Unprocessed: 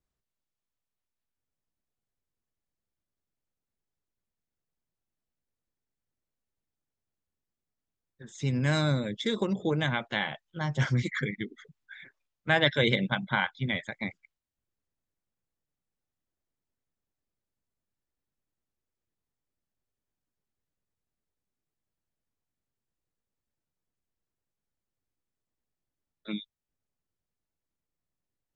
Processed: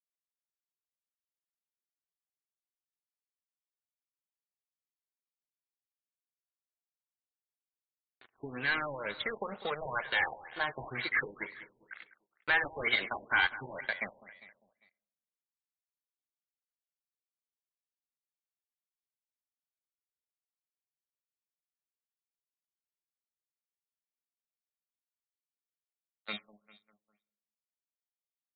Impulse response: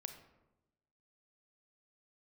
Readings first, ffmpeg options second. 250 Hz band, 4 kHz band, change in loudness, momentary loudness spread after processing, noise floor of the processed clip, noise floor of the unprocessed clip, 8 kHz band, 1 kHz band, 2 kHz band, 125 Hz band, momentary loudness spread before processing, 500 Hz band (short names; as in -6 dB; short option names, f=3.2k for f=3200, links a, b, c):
-16.0 dB, -5.5 dB, -4.0 dB, 19 LU, under -85 dBFS, under -85 dBFS, under -25 dB, -2.0 dB, +0.5 dB, -21.5 dB, 15 LU, -8.0 dB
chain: -filter_complex "[0:a]lowshelf=f=290:g=-11,bandreject=f=3.5k:w=11,acrossover=split=930[a][b];[a]acompressor=threshold=-37dB:ratio=6[c];[c][b]amix=inputs=2:normalize=0,aeval=exprs='sgn(val(0))*max(abs(val(0))-0.00531,0)':c=same,crystalizer=i=2:c=0,asplit=2[d][e];[e]highpass=f=720:p=1,volume=19dB,asoftclip=type=tanh:threshold=-15dB[f];[d][f]amix=inputs=2:normalize=0,lowpass=f=4.7k:p=1,volume=-6dB,flanger=delay=1.5:depth=1.3:regen=-40:speed=0.42:shape=sinusoidal,aecho=1:1:200|400|600|800:0.168|0.0772|0.0355|0.0163,asplit=2[g][h];[1:a]atrim=start_sample=2205,asetrate=37485,aresample=44100,lowpass=2.3k[i];[h][i]afir=irnorm=-1:irlink=0,volume=-11.5dB[j];[g][j]amix=inputs=2:normalize=0,afftfilt=real='re*lt(b*sr/1024,980*pow(4700/980,0.5+0.5*sin(2*PI*2.1*pts/sr)))':imag='im*lt(b*sr/1024,980*pow(4700/980,0.5+0.5*sin(2*PI*2.1*pts/sr)))':win_size=1024:overlap=0.75"